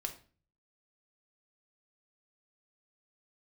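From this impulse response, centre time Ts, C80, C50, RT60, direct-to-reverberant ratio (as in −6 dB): 10 ms, 16.5 dB, 12.0 dB, 0.40 s, 3.5 dB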